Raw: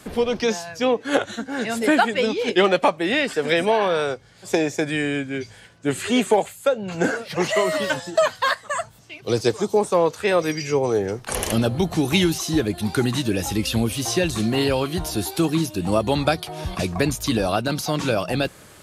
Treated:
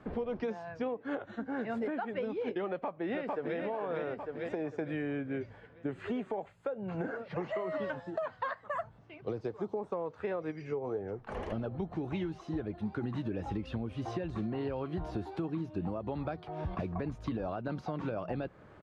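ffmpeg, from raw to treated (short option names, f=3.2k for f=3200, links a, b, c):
-filter_complex "[0:a]asplit=2[a][b];[b]afade=t=in:st=2.69:d=0.01,afade=t=out:st=3.58:d=0.01,aecho=0:1:450|900|1350|1800|2250|2700:0.595662|0.268048|0.120622|0.0542797|0.0244259|0.0109916[c];[a][c]amix=inputs=2:normalize=0,asplit=3[d][e][f];[d]afade=t=out:st=10.5:d=0.02[g];[e]flanger=delay=1.3:depth=3.5:regen=68:speed=1.9:shape=sinusoidal,afade=t=in:st=10.5:d=0.02,afade=t=out:st=13.02:d=0.02[h];[f]afade=t=in:st=13.02:d=0.02[i];[g][h][i]amix=inputs=3:normalize=0,lowpass=1.4k,alimiter=limit=-16dB:level=0:latency=1:release=326,acompressor=threshold=-26dB:ratio=6,volume=-5.5dB"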